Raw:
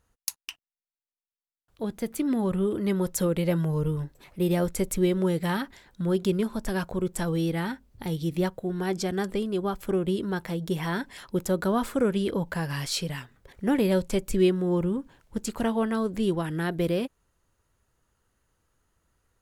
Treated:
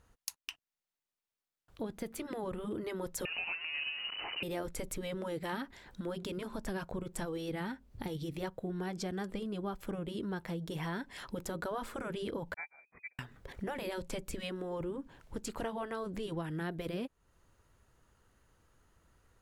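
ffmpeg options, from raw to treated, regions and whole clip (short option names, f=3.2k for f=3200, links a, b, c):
-filter_complex "[0:a]asettb=1/sr,asplit=3[a][b][c];[a]atrim=end=3.254[d];[b]atrim=start=3.25:end=4.43,asetpts=PTS-STARTPTS,afade=t=in:d=0.004:c=qsin,afade=t=out:st=1.176:d=0.004:c=qsin,aeval=exprs='val(0)+0.5*0.0282*sgn(val(0))':c=same,lowpass=f=2.6k:t=q:w=0.5098,lowpass=f=2.6k:t=q:w=0.6013,lowpass=f=2.6k:t=q:w=0.9,lowpass=f=2.6k:t=q:w=2.563,afreqshift=-3000,equalizer=f=1.5k:t=o:w=0.44:g=-2.5[e];[c]atrim=start=4.426[f];[d][e]acrossfade=d=0.004:c1=hsin:c2=qsin[g];[g][f]acrossfade=d=0.004:c1=qsin:c2=hsin,asettb=1/sr,asplit=3[h][i][j];[h]atrim=end=12.544[k];[i]atrim=start=12.54:end=13.19,asetpts=PTS-STARTPTS,afade=t=in:d=0.004:c=qsin,afade=t=out:st=0.646:d=0.004:c=qsin,aeval=exprs='val(0)+0.5*0.0106*sgn(val(0))':c=same,agate=range=-58dB:threshold=-26dB:ratio=16:release=100:detection=peak,lowpass=f=2.1k:t=q:w=0.5098,lowpass=f=2.1k:t=q:w=0.6013,lowpass=f=2.1k:t=q:w=0.9,lowpass=f=2.1k:t=q:w=2.563,afreqshift=-2500[l];[j]atrim=start=13.186[m];[k][l]acrossfade=d=0.004:c1=hsin:c2=qsin[n];[n][m]acrossfade=d=0.004:c1=qsin:c2=hsin,afftfilt=real='re*lt(hypot(re,im),0.447)':imag='im*lt(hypot(re,im),0.447)':win_size=1024:overlap=0.75,highshelf=f=5.6k:g=-6,acompressor=threshold=-46dB:ratio=2.5,volume=4.5dB"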